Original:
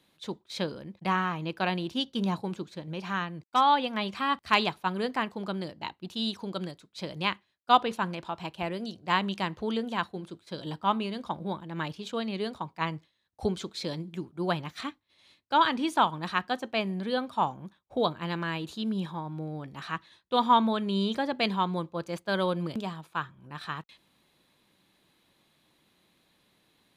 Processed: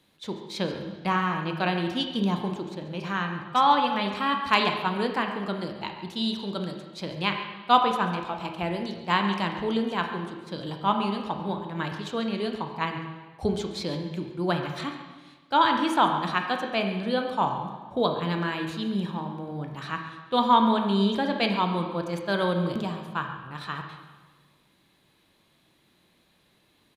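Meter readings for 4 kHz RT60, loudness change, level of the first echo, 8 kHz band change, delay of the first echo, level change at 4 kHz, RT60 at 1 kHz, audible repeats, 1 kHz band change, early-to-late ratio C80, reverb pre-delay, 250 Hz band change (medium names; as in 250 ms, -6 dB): 1.3 s, +3.0 dB, -15.0 dB, +1.5 dB, 139 ms, +2.5 dB, 1.3 s, 1, +3.0 dB, 7.0 dB, 18 ms, +4.0 dB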